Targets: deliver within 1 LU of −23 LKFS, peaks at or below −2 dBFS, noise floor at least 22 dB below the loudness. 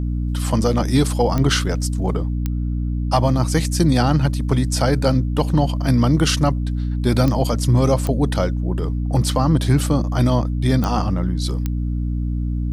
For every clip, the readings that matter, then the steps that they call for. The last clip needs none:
number of clicks 6; mains hum 60 Hz; hum harmonics up to 300 Hz; level of the hum −19 dBFS; integrated loudness −19.5 LKFS; sample peak −4.5 dBFS; target loudness −23.0 LKFS
→ click removal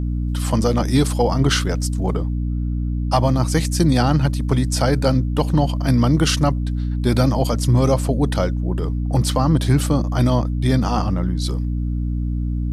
number of clicks 0; mains hum 60 Hz; hum harmonics up to 300 Hz; level of the hum −19 dBFS
→ hum removal 60 Hz, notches 5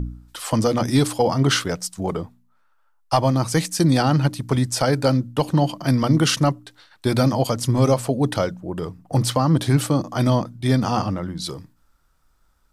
mains hum none found; integrated loudness −21.0 LKFS; sample peak −5.5 dBFS; target loudness −23.0 LKFS
→ level −2 dB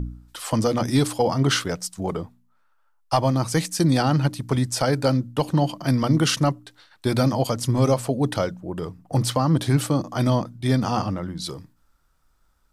integrated loudness −23.0 LKFS; sample peak −7.5 dBFS; background noise floor −63 dBFS

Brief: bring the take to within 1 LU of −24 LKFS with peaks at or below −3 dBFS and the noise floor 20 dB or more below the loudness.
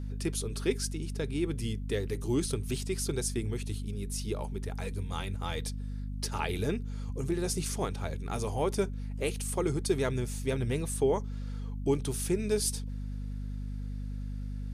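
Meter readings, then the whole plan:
mains hum 50 Hz; hum harmonics up to 250 Hz; level of the hum −34 dBFS; integrated loudness −33.5 LKFS; sample peak −15.5 dBFS; target loudness −24.0 LKFS
→ hum removal 50 Hz, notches 5
level +9.5 dB

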